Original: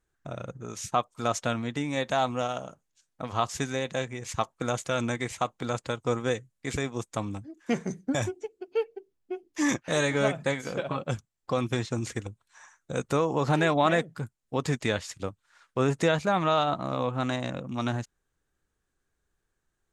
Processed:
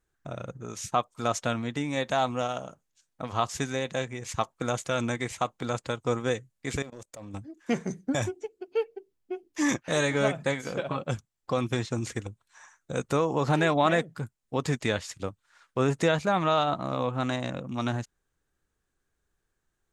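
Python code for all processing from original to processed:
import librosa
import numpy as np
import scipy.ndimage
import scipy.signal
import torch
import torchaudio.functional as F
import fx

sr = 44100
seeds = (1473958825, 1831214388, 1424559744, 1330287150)

y = fx.chain(x, sr, fx.peak_eq(hz=570.0, db=12.5, octaves=0.39),
    fx.level_steps(step_db=21),
    fx.clip_hard(threshold_db=-35.5), at=(6.82, 7.34))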